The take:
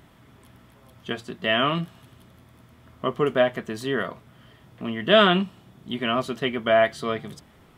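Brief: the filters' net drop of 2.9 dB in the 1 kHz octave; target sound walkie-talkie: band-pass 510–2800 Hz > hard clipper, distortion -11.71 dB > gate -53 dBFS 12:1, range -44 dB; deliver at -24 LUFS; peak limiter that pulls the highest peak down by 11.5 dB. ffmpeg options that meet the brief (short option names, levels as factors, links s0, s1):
-af "equalizer=f=1000:t=o:g=-3.5,alimiter=limit=0.141:level=0:latency=1,highpass=510,lowpass=2800,asoftclip=type=hard:threshold=0.0501,agate=range=0.00631:threshold=0.00224:ratio=12,volume=3.35"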